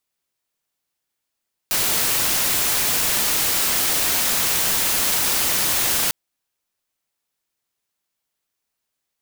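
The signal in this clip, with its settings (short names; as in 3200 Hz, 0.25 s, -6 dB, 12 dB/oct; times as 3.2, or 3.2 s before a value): noise white, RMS -20 dBFS 4.40 s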